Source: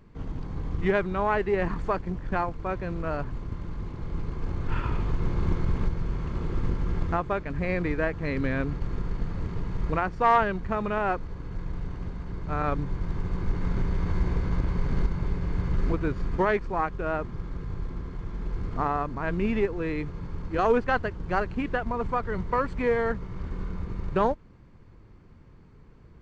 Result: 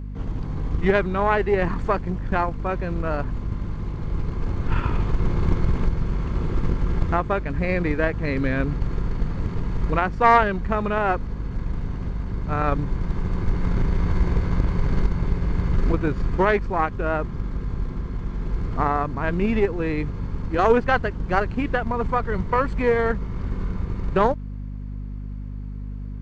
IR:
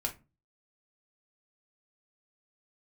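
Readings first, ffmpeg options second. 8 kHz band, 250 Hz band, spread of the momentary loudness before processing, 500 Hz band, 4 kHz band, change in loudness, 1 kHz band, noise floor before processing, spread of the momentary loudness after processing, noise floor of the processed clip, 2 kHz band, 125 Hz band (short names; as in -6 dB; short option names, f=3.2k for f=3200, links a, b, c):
n/a, +5.0 dB, 11 LU, +4.5 dB, +5.5 dB, +5.0 dB, +5.0 dB, -51 dBFS, 10 LU, -32 dBFS, +5.0 dB, +5.5 dB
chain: -af "aeval=exprs='0.376*(cos(1*acos(clip(val(0)/0.376,-1,1)))-cos(1*PI/2))+0.0668*(cos(2*acos(clip(val(0)/0.376,-1,1)))-cos(2*PI/2))':c=same,aeval=exprs='val(0)+0.0178*(sin(2*PI*50*n/s)+sin(2*PI*2*50*n/s)/2+sin(2*PI*3*50*n/s)/3+sin(2*PI*4*50*n/s)/4+sin(2*PI*5*50*n/s)/5)':c=same,volume=4.5dB"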